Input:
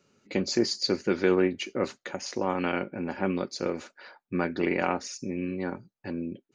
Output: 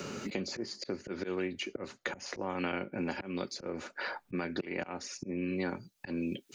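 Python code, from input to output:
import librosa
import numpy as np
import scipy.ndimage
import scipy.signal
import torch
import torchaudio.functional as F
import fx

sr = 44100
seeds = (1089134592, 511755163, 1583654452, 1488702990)

y = fx.recorder_agc(x, sr, target_db=-15.5, rise_db_per_s=5.1, max_gain_db=30)
y = fx.auto_swell(y, sr, attack_ms=365.0)
y = fx.band_squash(y, sr, depth_pct=100)
y = y * 10.0 ** (-2.5 / 20.0)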